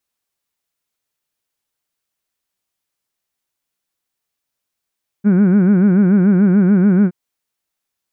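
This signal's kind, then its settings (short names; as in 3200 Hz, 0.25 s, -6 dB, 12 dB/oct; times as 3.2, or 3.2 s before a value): formant vowel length 1.87 s, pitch 192 Hz, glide 0 st, vibrato 6.9 Hz, vibrato depth 1.5 st, F1 260 Hz, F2 1500 Hz, F3 2300 Hz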